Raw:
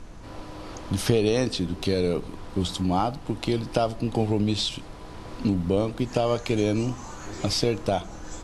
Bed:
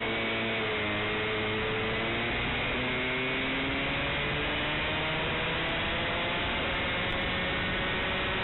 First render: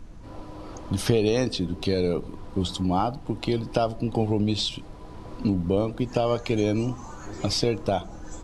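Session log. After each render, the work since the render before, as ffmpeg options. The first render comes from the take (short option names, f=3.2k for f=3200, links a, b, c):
-af "afftdn=nr=7:nf=-41"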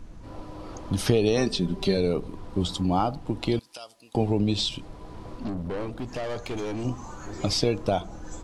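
-filter_complex "[0:a]asettb=1/sr,asplit=3[a][b][c];[a]atrim=end=1.374[d];[b]atrim=start=1.37:end=1.97,asetpts=PTS-STARTPTS,afade=t=in:d=0.004:c=qsin,afade=t=out:st=0.596:d=0.004:c=qsin,aecho=1:1:5.1:0.65,atrim=end_sample=26460[e];[c]atrim=start=1.966[f];[d][e]acrossfade=d=0.004:c1=hsin:c2=qsin[g];[g][f]acrossfade=d=0.004:c1=qsin:c2=hsin,asettb=1/sr,asplit=3[h][i][j];[h]atrim=end=3.594[k];[i]atrim=start=3.59:end=4.15,asetpts=PTS-STARTPTS,afade=t=in:d=0.004:c=qsin,afade=t=out:st=0.556:d=0.004:c=qsin,aderivative[l];[j]atrim=start=4.146[m];[k][l]acrossfade=d=0.004:c1=hsin:c2=qsin[n];[n][m]acrossfade=d=0.004:c1=qsin:c2=hsin,asettb=1/sr,asplit=3[o][p][q];[o]atrim=end=5.304[r];[p]atrim=start=5.3:end=6.85,asetpts=PTS-STARTPTS,afade=t=in:d=0.004:c=qsin,afade=t=out:st=1.546:d=0.004:c=qsin,aeval=exprs='(tanh(25.1*val(0)+0.35)-tanh(0.35))/25.1':c=same[s];[q]atrim=start=6.846[t];[r][s]acrossfade=d=0.004:c1=hsin:c2=qsin[u];[u][t]acrossfade=d=0.004:c1=qsin:c2=hsin"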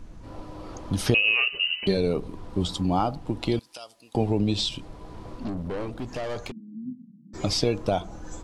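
-filter_complex "[0:a]asettb=1/sr,asplit=3[a][b][c];[a]atrim=end=1.144[d];[b]atrim=start=1.14:end=1.87,asetpts=PTS-STARTPTS,afade=t=in:d=0.004:c=qsin,afade=t=out:st=0.726:d=0.004:c=qsin,lowpass=f=2.6k:t=q:w=0.5098,lowpass=f=2.6k:t=q:w=0.6013,lowpass=f=2.6k:t=q:w=0.9,lowpass=f=2.6k:t=q:w=2.563,afreqshift=-3000[e];[c]atrim=start=1.866[f];[d][e]acrossfade=d=0.004:c1=hsin:c2=qsin[g];[g][f]acrossfade=d=0.004:c1=qsin:c2=hsin,asplit=3[h][i][j];[h]afade=t=out:st=6.5:d=0.02[k];[i]asuperpass=centerf=200:order=8:qfactor=2,afade=t=in:st=6.5:d=0.02,afade=t=out:st=7.33:d=0.02[l];[j]afade=t=in:st=7.33:d=0.02[m];[k][l][m]amix=inputs=3:normalize=0"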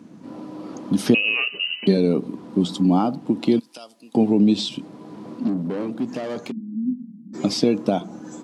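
-af "highpass=f=150:w=0.5412,highpass=f=150:w=1.3066,equalizer=f=240:w=1.2:g=12"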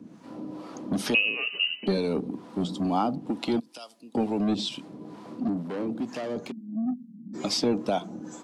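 -filter_complex "[0:a]acrossover=split=590[a][b];[a]aeval=exprs='val(0)*(1-0.7/2+0.7/2*cos(2*PI*2.2*n/s))':c=same[c];[b]aeval=exprs='val(0)*(1-0.7/2-0.7/2*cos(2*PI*2.2*n/s))':c=same[d];[c][d]amix=inputs=2:normalize=0,acrossover=split=430|1100[e][f][g];[e]asoftclip=type=tanh:threshold=-24.5dB[h];[h][f][g]amix=inputs=3:normalize=0"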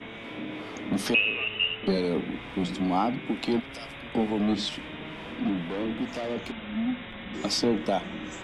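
-filter_complex "[1:a]volume=-11.5dB[a];[0:a][a]amix=inputs=2:normalize=0"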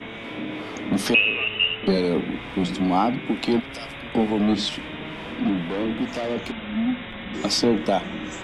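-af "volume=5dB"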